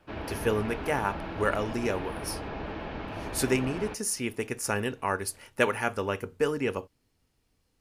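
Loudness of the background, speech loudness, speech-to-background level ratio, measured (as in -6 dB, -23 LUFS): -37.5 LUFS, -30.5 LUFS, 7.0 dB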